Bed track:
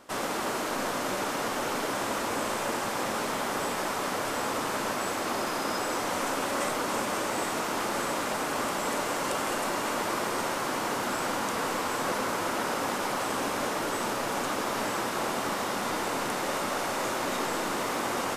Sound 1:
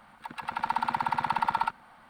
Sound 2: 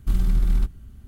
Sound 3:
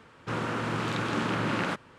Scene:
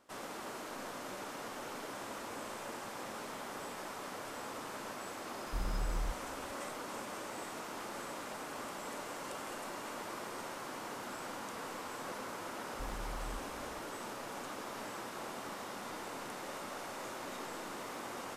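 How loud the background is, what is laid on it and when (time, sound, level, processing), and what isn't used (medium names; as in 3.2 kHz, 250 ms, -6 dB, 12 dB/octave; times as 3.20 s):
bed track -13.5 dB
5.46 s: add 2 -16.5 dB
12.73 s: add 2 -15 dB + compression, threshold -25 dBFS
not used: 1, 3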